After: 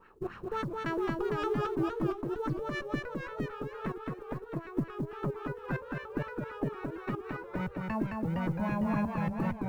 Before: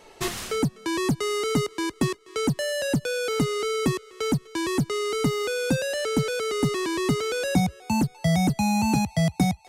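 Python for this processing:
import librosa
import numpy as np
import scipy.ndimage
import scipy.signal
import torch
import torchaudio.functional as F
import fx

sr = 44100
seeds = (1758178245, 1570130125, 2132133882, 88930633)

y = fx.lower_of_two(x, sr, delay_ms=0.72)
y = fx.bass_treble(y, sr, bass_db=1, treble_db=11, at=(0.52, 2.82))
y = fx.level_steps(y, sr, step_db=14)
y = fx.filter_lfo_lowpass(y, sr, shape='sine', hz=3.7, low_hz=330.0, high_hz=1900.0, q=2.7)
y = fx.quant_companded(y, sr, bits=8)
y = y + 10.0 ** (-3.5 / 20.0) * np.pad(y, (int(216 * sr / 1000.0), 0))[:len(y)]
y = fx.echo_warbled(y, sr, ms=460, feedback_pct=30, rate_hz=2.8, cents=138, wet_db=-6.5)
y = y * 10.0 ** (-5.5 / 20.0)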